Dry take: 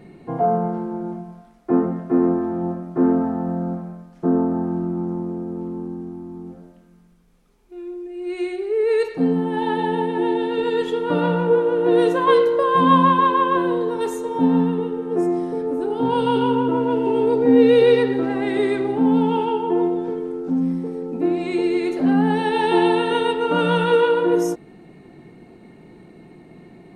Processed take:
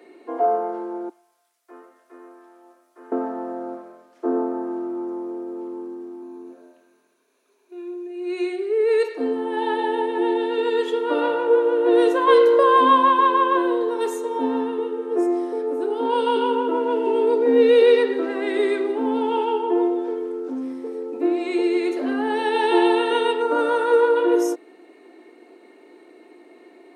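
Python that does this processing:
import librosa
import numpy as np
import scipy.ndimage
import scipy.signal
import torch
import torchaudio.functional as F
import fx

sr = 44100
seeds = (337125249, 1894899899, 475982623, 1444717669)

y = fx.differentiator(x, sr, at=(1.09, 3.12))
y = fx.ripple_eq(y, sr, per_octave=1.5, db=8, at=(6.22, 8.5))
y = fx.env_flatten(y, sr, amount_pct=50, at=(12.31, 12.93))
y = fx.peak_eq(y, sr, hz=3000.0, db=-14.5, octaves=0.64, at=(23.42, 24.16))
y = scipy.signal.sosfilt(scipy.signal.butter(8, 290.0, 'highpass', fs=sr, output='sos'), y)
y = fx.notch(y, sr, hz=800.0, q=12.0)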